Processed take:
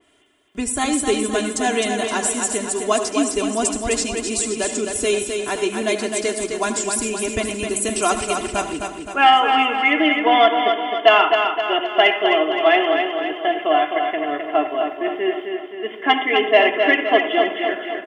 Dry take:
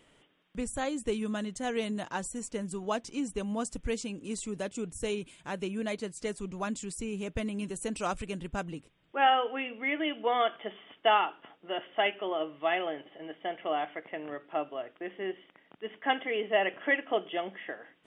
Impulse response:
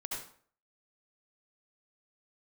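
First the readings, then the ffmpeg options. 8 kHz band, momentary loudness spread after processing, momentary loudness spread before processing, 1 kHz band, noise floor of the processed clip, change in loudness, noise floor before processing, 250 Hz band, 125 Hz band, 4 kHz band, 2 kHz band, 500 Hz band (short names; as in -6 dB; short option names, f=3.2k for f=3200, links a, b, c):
+20.0 dB, 9 LU, 12 LU, +13.5 dB, -34 dBFS, +14.0 dB, -65 dBFS, +11.5 dB, +4.5 dB, +15.5 dB, +14.5 dB, +14.0 dB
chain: -filter_complex "[0:a]agate=range=-8dB:threshold=-50dB:ratio=16:detection=peak,highpass=f=120:p=1,highshelf=f=7.5k:g=5,aecho=1:1:2.9:0.83,asplit=2[a][b];[1:a]atrim=start_sample=2205[c];[b][c]afir=irnorm=-1:irlink=0,volume=-8dB[d];[a][d]amix=inputs=2:normalize=0,acontrast=33,aecho=1:1:260|520|780|1040|1300|1560|1820:0.531|0.281|0.149|0.079|0.0419|0.0222|0.0118,adynamicequalizer=threshold=0.02:dfrequency=2800:dqfactor=0.7:tfrequency=2800:tqfactor=0.7:attack=5:release=100:ratio=0.375:range=2:mode=boostabove:tftype=highshelf,volume=2.5dB"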